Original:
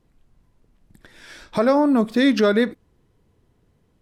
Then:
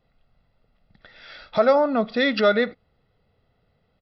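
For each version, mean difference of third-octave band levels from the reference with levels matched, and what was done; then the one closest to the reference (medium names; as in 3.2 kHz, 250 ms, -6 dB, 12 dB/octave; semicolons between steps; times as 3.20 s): 4.0 dB: bass shelf 210 Hz -10.5 dB; comb 1.5 ms, depth 65%; resampled via 11.025 kHz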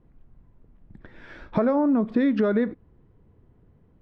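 5.5 dB: low-pass 1.9 kHz 12 dB/octave; bass shelf 370 Hz +6 dB; compression 10:1, threshold -18 dBFS, peak gain reduction 9 dB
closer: first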